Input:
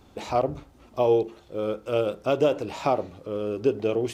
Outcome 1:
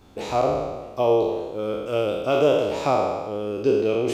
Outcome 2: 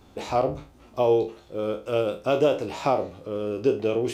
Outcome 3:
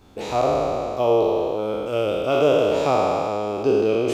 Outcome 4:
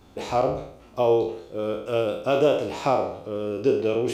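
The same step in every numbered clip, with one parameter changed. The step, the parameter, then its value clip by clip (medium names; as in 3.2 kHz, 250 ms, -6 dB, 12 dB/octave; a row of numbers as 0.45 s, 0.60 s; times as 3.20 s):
spectral sustain, RT60: 1.35 s, 0.31 s, 3.05 s, 0.64 s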